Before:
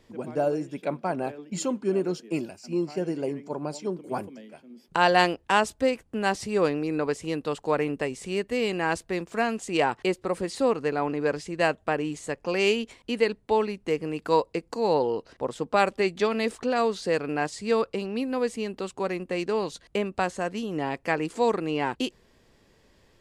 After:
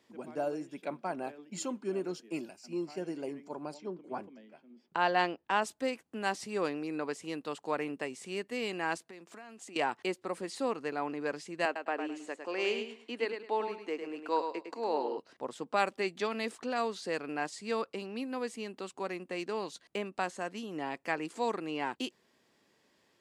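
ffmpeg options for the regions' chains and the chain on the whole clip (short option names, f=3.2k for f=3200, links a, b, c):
-filter_complex "[0:a]asettb=1/sr,asplit=3[a][b][c];[a]atrim=end=3.744[d];[b]atrim=start=3.74:end=5.62,asetpts=PTS-STARTPTS,afade=t=in:d=0.004:c=qsin,afade=t=out:st=1.876:d=0.004:c=qsin,lowpass=5.4k,highshelf=f=2.5k:g=-6[e];[c]atrim=start=5.616[f];[d][e]acrossfade=d=0.004:c1=hsin:c2=qsin[g];[g][f]acrossfade=d=0.004:c1=qsin:c2=hsin,asettb=1/sr,asplit=3[h][i][j];[h]atrim=end=8.974[k];[i]atrim=start=8.97:end=9.76,asetpts=PTS-STARTPTS,afade=t=in:d=0.004:c=qsin,afade=t=out:st=0.786:d=0.004:c=qsin,highpass=130,acompressor=threshold=-37dB:ratio=12:attack=3.2:release=140:knee=1:detection=peak[l];[j]atrim=start=9.756[m];[k][l]acrossfade=d=0.004:c1=hsin:c2=qsin[n];[n][m]acrossfade=d=0.004:c1=qsin:c2=hsin,asettb=1/sr,asplit=3[o][p][q];[o]atrim=end=11.654[r];[p]atrim=start=11.65:end=15.18,asetpts=PTS-STARTPTS,afade=t=in:d=0.004:c=qsin,afade=t=out:st=3.526:d=0.004:c=qsin,highpass=f=250:w=0.5412,highpass=f=250:w=1.3066,aemphasis=mode=reproduction:type=50kf,aecho=1:1:105|210|315:0.447|0.107|0.0257,atrim=end_sample=155673[s];[q]atrim=start=15.176[t];[r][s]acrossfade=d=0.004:c1=hsin:c2=qsin[u];[u][t]acrossfade=d=0.004:c1=qsin:c2=hsin,highpass=230,equalizer=f=480:t=o:w=0.66:g=-4.5,volume=-6dB"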